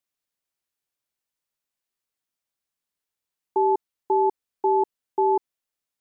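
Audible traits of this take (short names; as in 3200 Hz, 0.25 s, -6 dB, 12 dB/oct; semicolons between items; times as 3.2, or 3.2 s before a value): noise floor -87 dBFS; spectral tilt +2.0 dB/oct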